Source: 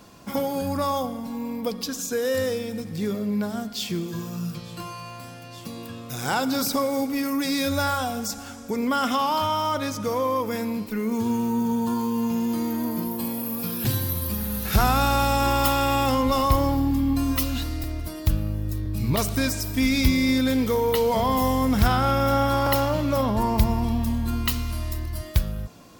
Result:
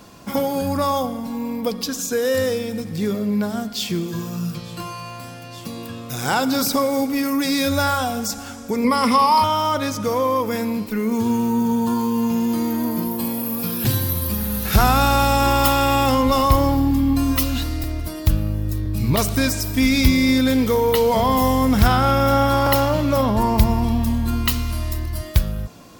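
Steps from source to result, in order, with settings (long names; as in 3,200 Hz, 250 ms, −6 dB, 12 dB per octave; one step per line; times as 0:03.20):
0:08.84–0:09.44: EQ curve with evenly spaced ripples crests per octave 0.9, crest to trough 15 dB
level +4.5 dB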